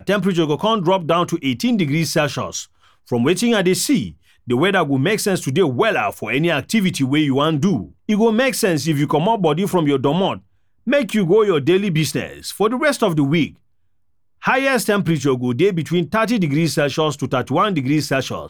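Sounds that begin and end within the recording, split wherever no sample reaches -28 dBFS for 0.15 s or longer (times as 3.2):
3.12–4.1
4.48–7.85
8.09–10.38
10.87–13.48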